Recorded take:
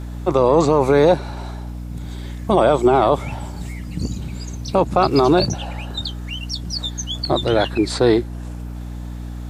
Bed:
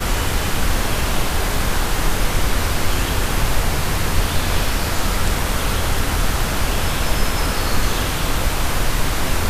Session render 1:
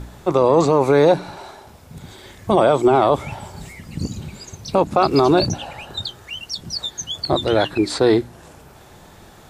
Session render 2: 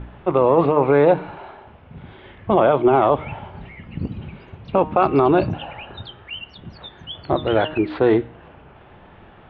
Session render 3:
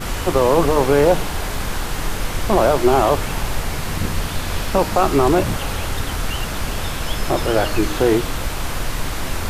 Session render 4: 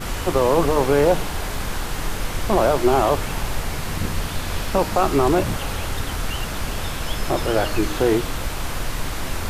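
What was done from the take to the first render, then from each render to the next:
hum removal 60 Hz, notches 5
elliptic low-pass filter 3,000 Hz, stop band 70 dB; hum removal 154.9 Hz, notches 25
mix in bed −4.5 dB
level −2.5 dB

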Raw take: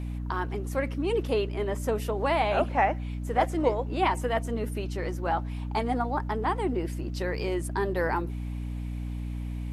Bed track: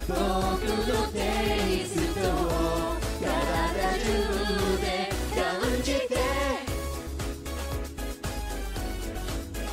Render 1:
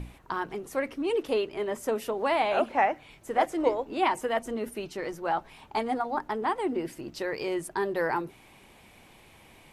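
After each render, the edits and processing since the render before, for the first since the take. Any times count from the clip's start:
mains-hum notches 60/120/180/240/300 Hz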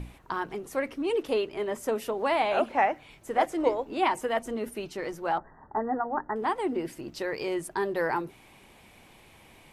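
0:05.38–0:06.36: linear-phase brick-wall low-pass 2,000 Hz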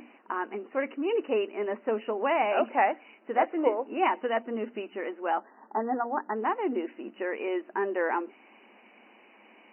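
brick-wall band-pass 200–3,000 Hz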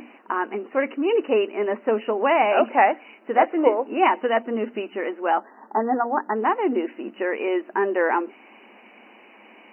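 level +7 dB

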